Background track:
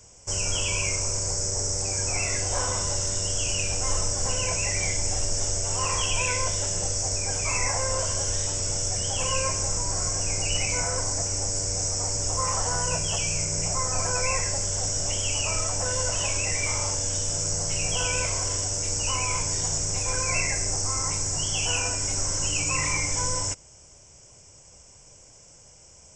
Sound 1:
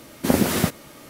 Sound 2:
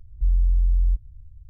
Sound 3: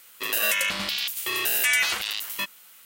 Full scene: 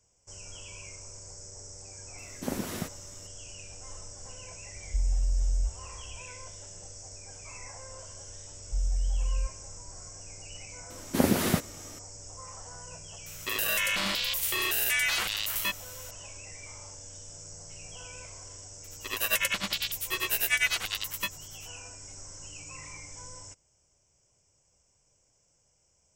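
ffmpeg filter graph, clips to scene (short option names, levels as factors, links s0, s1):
-filter_complex "[1:a]asplit=2[s0][s1];[2:a]asplit=2[s2][s3];[3:a]asplit=2[s4][s5];[0:a]volume=0.119[s6];[s2]equalizer=f=64:w=1.5:g=14[s7];[s4]alimiter=level_in=10:limit=0.891:release=50:level=0:latency=1[s8];[s5]tremolo=f=10:d=0.95[s9];[s0]atrim=end=1.09,asetpts=PTS-STARTPTS,volume=0.188,afade=t=in:d=0.004:c=hsin,afade=t=out:st=1.086:d=0.004:c=hsin,adelay=2180[s10];[s7]atrim=end=1.49,asetpts=PTS-STARTPTS,volume=0.211,afade=t=in:d=0.004:c=hsin,afade=t=out:st=1.486:d=0.004:c=hsin,adelay=4720[s11];[s3]atrim=end=1.49,asetpts=PTS-STARTPTS,volume=0.355,afade=t=in:d=0.004:c=hsin,afade=t=out:st=1.486:d=0.004:c=hsin,adelay=8510[s12];[s1]atrim=end=1.09,asetpts=PTS-STARTPTS,volume=0.562,afade=t=in:d=0.004:c=hsin,afade=t=out:st=1.086:d=0.004:c=hsin,adelay=480690S[s13];[s8]atrim=end=2.85,asetpts=PTS-STARTPTS,volume=0.141,afade=t=in:d=0.004:c=hsin,afade=t=out:st=2.846:d=0.004:c=hsin,adelay=13260[s14];[s9]atrim=end=2.85,asetpts=PTS-STARTPTS,volume=0.944,afade=t=in:d=0.004:c=hsin,afade=t=out:st=2.846:d=0.004:c=hsin,adelay=18840[s15];[s6][s10][s11][s12][s13][s14][s15]amix=inputs=7:normalize=0"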